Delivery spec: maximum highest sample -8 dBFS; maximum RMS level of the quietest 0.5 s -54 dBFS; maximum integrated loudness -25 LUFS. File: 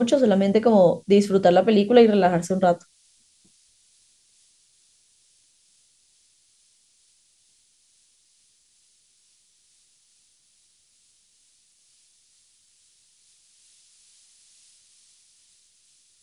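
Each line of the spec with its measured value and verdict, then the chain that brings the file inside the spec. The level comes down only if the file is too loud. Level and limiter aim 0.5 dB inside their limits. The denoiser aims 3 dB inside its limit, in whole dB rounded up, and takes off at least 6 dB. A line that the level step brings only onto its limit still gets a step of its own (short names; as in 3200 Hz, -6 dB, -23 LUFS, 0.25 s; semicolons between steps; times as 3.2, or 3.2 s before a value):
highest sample -3.5 dBFS: fail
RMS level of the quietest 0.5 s -63 dBFS: OK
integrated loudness -18.5 LUFS: fail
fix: gain -7 dB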